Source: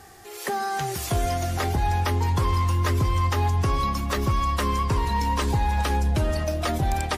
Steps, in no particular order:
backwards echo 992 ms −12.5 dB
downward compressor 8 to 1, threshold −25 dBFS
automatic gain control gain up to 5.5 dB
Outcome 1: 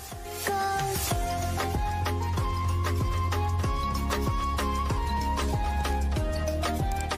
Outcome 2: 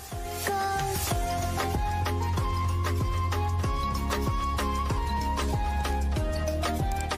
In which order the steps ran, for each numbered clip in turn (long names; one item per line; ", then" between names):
automatic gain control, then downward compressor, then backwards echo
backwards echo, then automatic gain control, then downward compressor